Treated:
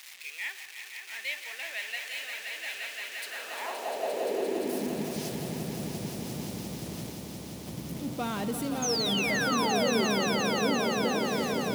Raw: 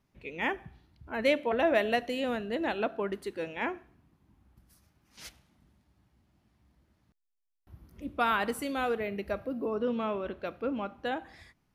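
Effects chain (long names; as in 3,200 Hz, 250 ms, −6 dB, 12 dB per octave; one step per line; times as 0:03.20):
converter with a step at zero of −31 dBFS
parametric band 1,500 Hz −10 dB 1.5 octaves
sound drawn into the spectrogram fall, 0:08.82–0:10.05, 360–6,700 Hz −27 dBFS
echo that builds up and dies away 174 ms, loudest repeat 5, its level −8 dB
high-pass filter sweep 2,000 Hz → 150 Hz, 0:03.15–0:05.21
level −4 dB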